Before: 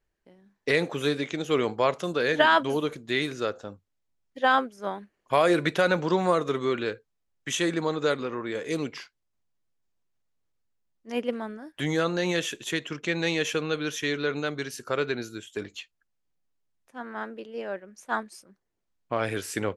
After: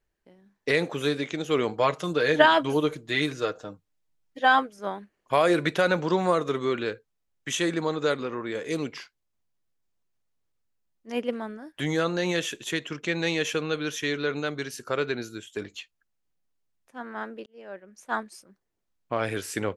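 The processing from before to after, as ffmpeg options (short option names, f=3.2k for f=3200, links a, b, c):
-filter_complex "[0:a]asettb=1/sr,asplit=3[a][b][c];[a]atrim=end=1.734[d];[b]atrim=start=1.73:end=4.79,asetpts=PTS-STARTPTS,afade=t=in:d=0.004:c=qsin,afade=t=out:st=3.056:d=0.004:c=qsin,aecho=1:1:6.5:0.56,atrim=end_sample=134946[e];[c]atrim=start=4.786[f];[d][e]acrossfade=d=0.004:c1=hsin:c2=qsin[g];[g][f]acrossfade=d=0.004:c1=qsin:c2=hsin,asplit=2[h][i];[h]atrim=end=17.46,asetpts=PTS-STARTPTS,afade=t=out:st=17.456:d=0.004:c=hsin[j];[i]atrim=start=17.46,asetpts=PTS-STARTPTS,afade=t=in:d=0.83:c=qsin[k];[j][k]concat=n=2:v=0:a=1"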